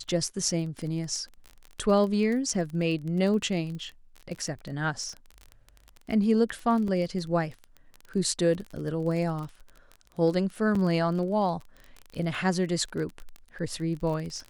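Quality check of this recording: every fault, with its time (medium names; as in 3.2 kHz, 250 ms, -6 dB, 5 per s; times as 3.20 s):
crackle 22 per s -33 dBFS
2.54 s: dropout 3.6 ms
6.88 s: dropout 2 ms
10.75 s: dropout 4.3 ms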